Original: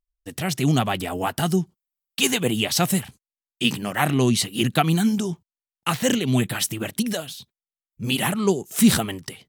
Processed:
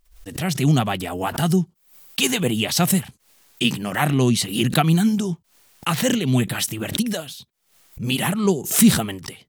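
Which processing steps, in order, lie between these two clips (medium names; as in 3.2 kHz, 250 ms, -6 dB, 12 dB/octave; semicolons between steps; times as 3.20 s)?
dynamic bell 160 Hz, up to +4 dB, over -32 dBFS, Q 1.8; swell ahead of each attack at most 110 dB/s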